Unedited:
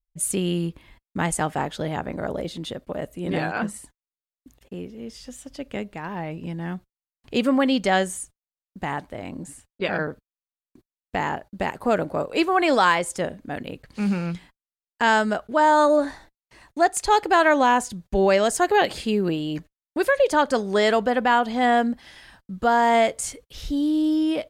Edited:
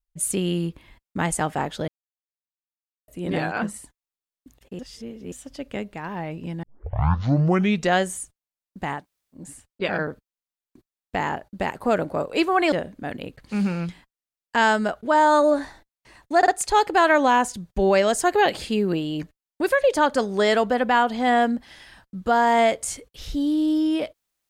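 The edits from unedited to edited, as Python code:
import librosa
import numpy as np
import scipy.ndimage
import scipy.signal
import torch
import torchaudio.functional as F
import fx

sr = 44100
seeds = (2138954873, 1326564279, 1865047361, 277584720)

y = fx.edit(x, sr, fx.silence(start_s=1.88, length_s=1.2),
    fx.reverse_span(start_s=4.79, length_s=0.53),
    fx.tape_start(start_s=6.63, length_s=1.36),
    fx.room_tone_fill(start_s=8.99, length_s=0.41, crossfade_s=0.16),
    fx.cut(start_s=12.72, length_s=0.46),
    fx.stutter(start_s=16.84, slice_s=0.05, count=3), tone=tone)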